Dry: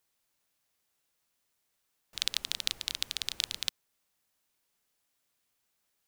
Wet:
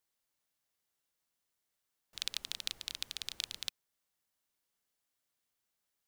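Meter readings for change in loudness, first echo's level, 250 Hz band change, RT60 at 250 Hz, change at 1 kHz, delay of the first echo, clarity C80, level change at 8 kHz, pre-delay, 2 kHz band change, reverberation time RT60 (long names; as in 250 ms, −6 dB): −6.5 dB, no echo audible, −6.5 dB, no reverb audible, −6.5 dB, no echo audible, no reverb audible, −6.5 dB, no reverb audible, −7.5 dB, no reverb audible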